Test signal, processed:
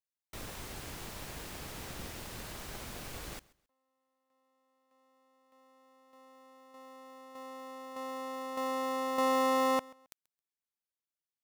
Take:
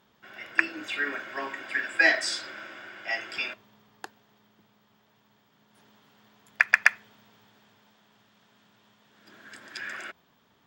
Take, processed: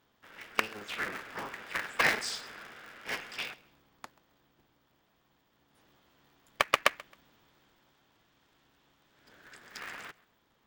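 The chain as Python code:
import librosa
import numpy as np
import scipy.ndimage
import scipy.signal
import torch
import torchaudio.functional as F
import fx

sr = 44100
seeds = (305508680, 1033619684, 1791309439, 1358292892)

y = fx.cycle_switch(x, sr, every=3, mode='inverted')
y = fx.echo_feedback(y, sr, ms=134, feedback_pct=26, wet_db=-23.0)
y = y * 10.0 ** (-6.0 / 20.0)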